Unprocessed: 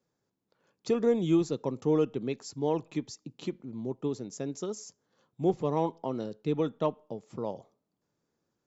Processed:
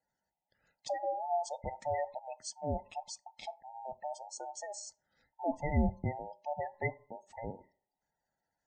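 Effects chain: every band turned upside down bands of 1 kHz; 5.43–6.37 s: tone controls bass +8 dB, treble +5 dB; spectral gate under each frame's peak -20 dB strong; high-order bell 550 Hz -9 dB; reverberation RT60 0.45 s, pre-delay 3 ms, DRR 16 dB; 2.19–2.79 s: three bands expanded up and down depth 70%

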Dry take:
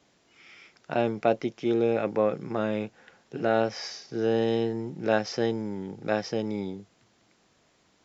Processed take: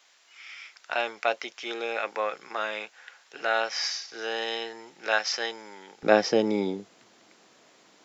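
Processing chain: high-pass 1.2 kHz 12 dB/octave, from 6.03 s 260 Hz; trim +8 dB

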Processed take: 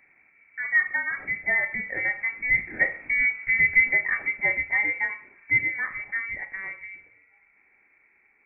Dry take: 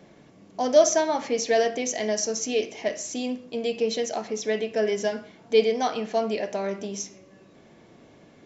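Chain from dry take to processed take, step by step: Doppler pass-by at 3.43 s, 6 m/s, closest 4 m; frequency inversion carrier 2.5 kHz; trim +7 dB

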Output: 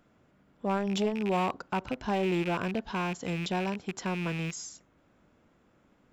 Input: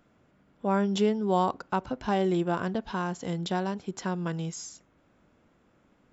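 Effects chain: rattle on loud lows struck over -37 dBFS, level -25 dBFS; in parallel at -8 dB: wavefolder -23 dBFS; on the sum: transformer saturation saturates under 300 Hz; trim -3.5 dB

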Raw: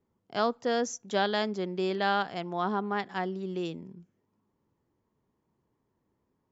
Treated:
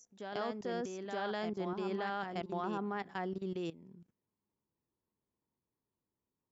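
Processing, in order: dynamic bell 3.9 kHz, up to -6 dB, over -49 dBFS, Q 1.7; level held to a coarse grid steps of 18 dB; reverse echo 923 ms -5.5 dB; trim -1.5 dB

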